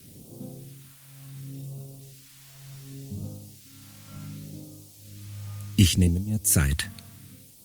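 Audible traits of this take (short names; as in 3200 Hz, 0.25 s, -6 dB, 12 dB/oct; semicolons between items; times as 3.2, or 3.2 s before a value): tremolo triangle 0.76 Hz, depth 95%; a quantiser's noise floor 10-bit, dither triangular; phasing stages 2, 0.68 Hz, lowest notch 340–1700 Hz; Opus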